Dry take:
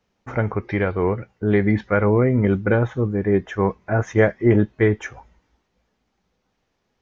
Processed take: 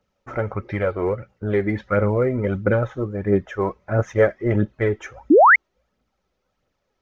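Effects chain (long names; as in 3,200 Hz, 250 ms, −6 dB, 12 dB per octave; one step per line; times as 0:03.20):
hollow resonant body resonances 560/1,300 Hz, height 10 dB
phase shifter 1.5 Hz, delay 3.2 ms, feedback 45%
sound drawn into the spectrogram rise, 0:05.30–0:05.56, 260–2,300 Hz −6 dBFS
level −4.5 dB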